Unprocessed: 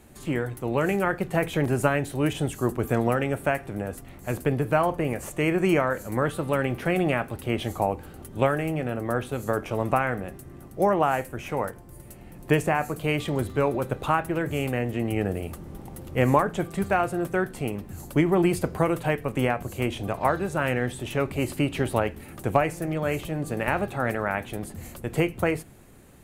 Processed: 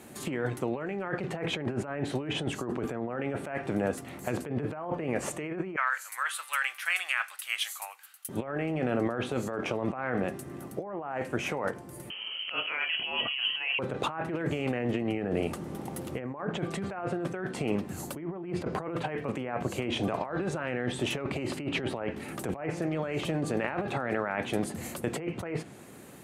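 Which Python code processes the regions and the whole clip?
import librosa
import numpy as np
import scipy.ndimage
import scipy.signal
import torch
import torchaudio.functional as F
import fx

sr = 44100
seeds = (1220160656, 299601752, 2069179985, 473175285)

y = fx.chain(x, sr, fx.highpass(hz=1300.0, slope=24),
    fx.high_shelf(hz=9500.0, db=7.5),
    fx.band_widen(depth_pct=70), at=(5.76, 8.29))
y = fx.chain(y, sr, fx.freq_invert(carrier_hz=3100),
    fx.doubler(ms=28.0, db=-8.5), at=(12.1, 13.79))
y = fx.env_lowpass_down(y, sr, base_hz=1800.0, full_db=-18.0)
y = scipy.signal.sosfilt(scipy.signal.butter(2, 160.0, 'highpass', fs=sr, output='sos'), y)
y = fx.over_compress(y, sr, threshold_db=-32.0, ratio=-1.0)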